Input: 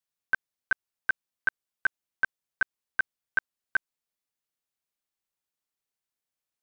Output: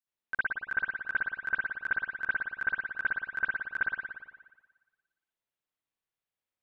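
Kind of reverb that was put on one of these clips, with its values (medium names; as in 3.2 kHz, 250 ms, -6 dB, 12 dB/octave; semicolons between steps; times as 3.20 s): spring tank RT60 1.3 s, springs 56 ms, chirp 35 ms, DRR -9 dB; trim -9.5 dB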